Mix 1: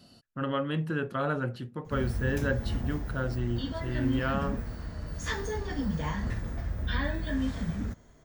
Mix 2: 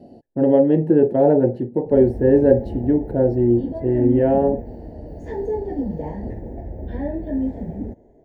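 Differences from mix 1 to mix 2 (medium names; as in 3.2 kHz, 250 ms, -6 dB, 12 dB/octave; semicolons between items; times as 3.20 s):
speech +8.0 dB; master: add FFT filter 160 Hz 0 dB, 360 Hz +13 dB, 870 Hz +6 dB, 1.2 kHz -30 dB, 1.8 kHz -9 dB, 3.2 kHz -22 dB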